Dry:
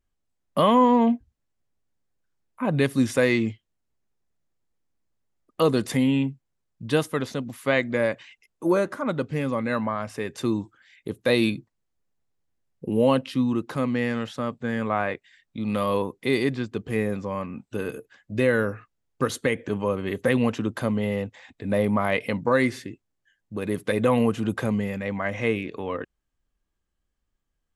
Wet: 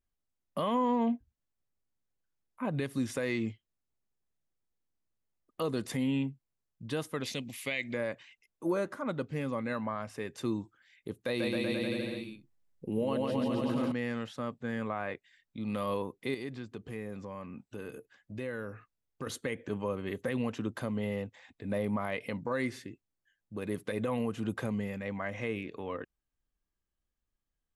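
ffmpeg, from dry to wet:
-filter_complex "[0:a]asettb=1/sr,asplit=3[s0][s1][s2];[s0]atrim=end=7.234[s3];[s1]atrim=start=7.23:end=7.94,asetpts=PTS-STARTPTS,afade=t=in:d=0.004:c=qsin,afade=t=out:st=0.706:d=0.004:c=qsin,highshelf=f=1800:t=q:w=3:g=8.5[s4];[s2]atrim=start=7.936[s5];[s3][s4]acrossfade=d=0.004:c1=hsin:c2=qsin[s6];[s6][s5]acrossfade=d=0.004:c1=qsin:c2=hsin,asettb=1/sr,asplit=3[s7][s8][s9];[s7]atrim=end=11.224[s10];[s8]atrim=start=11.22:end=13.92,asetpts=PTS-STARTPTS,afade=t=in:d=0.004:c=qsin,afade=t=out:st=2.696:d=0.004:c=qsin,aecho=1:1:140|266|379.4|481.5|573.3|656|730.4|797.3|857.6:0.794|0.631|0.501|0.398|0.316|0.251|0.2|0.158|0.126,atrim=end_sample=119070[s11];[s9]atrim=start=13.916[s12];[s10][s11]acrossfade=d=0.004:c1=hsin:c2=qsin[s13];[s13][s12]acrossfade=d=0.004:c1=qsin:c2=hsin,asettb=1/sr,asplit=3[s14][s15][s16];[s14]atrim=end=16.344[s17];[s15]atrim=start=16.34:end=19.27,asetpts=PTS-STARTPTS,afade=t=in:d=0.004:c=qsin,afade=t=out:st=2.926:d=0.004:c=qsin,acompressor=threshold=0.0251:ratio=2:attack=3.2:release=140:knee=1:detection=peak[s18];[s16]atrim=start=19.266[s19];[s17][s18]acrossfade=d=0.004:c1=hsin:c2=qsin[s20];[s20][s19]acrossfade=d=0.004:c1=qsin:c2=hsin,alimiter=limit=0.2:level=0:latency=1:release=107,volume=0.398"

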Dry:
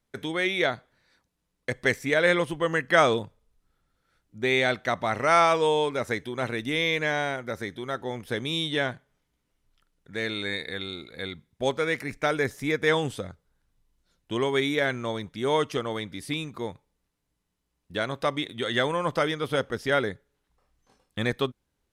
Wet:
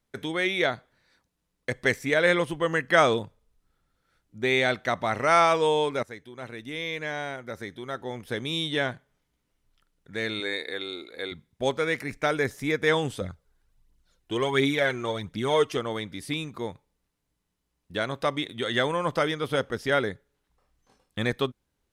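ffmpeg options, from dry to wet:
-filter_complex "[0:a]asettb=1/sr,asplit=3[s0][s1][s2];[s0]atrim=end=10.404[s3];[s1]atrim=start=10.4:end=11.32,asetpts=PTS-STARTPTS,afade=t=in:d=0.004:c=qsin,afade=t=out:st=0.916:d=0.004:c=qsin,lowshelf=f=230:t=q:w=1.5:g=-12.5[s4];[s2]atrim=start=11.316[s5];[s3][s4]acrossfade=d=0.004:c1=hsin:c2=qsin[s6];[s6][s5]acrossfade=d=0.004:c1=qsin:c2=hsin,asettb=1/sr,asplit=3[s7][s8][s9];[s7]atrim=end=13.214[s10];[s8]atrim=start=13.21:end=15.76,asetpts=PTS-STARTPTS,afade=t=in:d=0.004:c=qsin,afade=t=out:st=2.546:d=0.004:c=qsin,aphaser=in_gain=1:out_gain=1:delay=3:decay=0.5:speed=1.4:type=triangular[s11];[s9]atrim=start=15.756[s12];[s10][s11]acrossfade=d=0.004:c1=hsin:c2=qsin[s13];[s13][s12]acrossfade=d=0.004:c1=qsin:c2=hsin,asplit=2[s14][s15];[s14]atrim=end=6.03,asetpts=PTS-STARTPTS,afade=t=out:st=6.026:d=0.004:c=hsin:silence=0.211349[s16];[s15]atrim=start=6.03,asetpts=PTS-STARTPTS,afade=t=in:d=2.81:silence=0.211349[s17];[s16][s17]concat=n=2:v=0:a=1"

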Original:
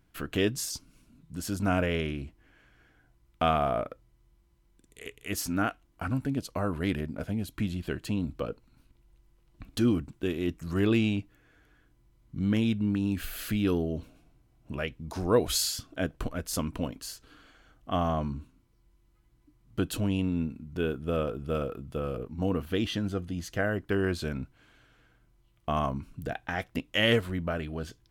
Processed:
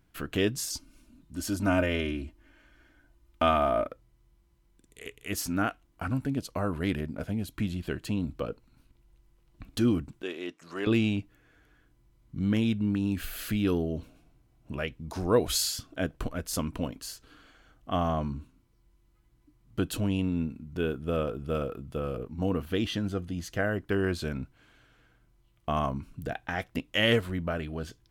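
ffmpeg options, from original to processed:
-filter_complex "[0:a]asettb=1/sr,asplit=3[s0][s1][s2];[s0]atrim=end=0.704[s3];[s1]atrim=start=0.7:end=3.88,asetpts=PTS-STARTPTS,afade=t=in:d=0.004:c=qsin,afade=t=out:st=3.176:d=0.004:c=qsin,aecho=1:1:3.3:0.64,atrim=end_sample=140238[s4];[s2]atrim=start=3.876[s5];[s3][s4]acrossfade=d=0.004:c1=hsin:c2=qsin[s6];[s6][s5]acrossfade=d=0.004:c1=qsin:c2=hsin,asettb=1/sr,asplit=3[s7][s8][s9];[s7]atrim=end=10.224[s10];[s8]atrim=start=10.22:end=10.87,asetpts=PTS-STARTPTS,afade=t=in:d=0.004:c=qsin,afade=t=out:st=0.646:d=0.004:c=qsin,highpass=460,lowpass=7200[s11];[s9]atrim=start=10.866[s12];[s10][s11]acrossfade=d=0.004:c1=hsin:c2=qsin[s13];[s13][s12]acrossfade=d=0.004:c1=qsin:c2=hsin"

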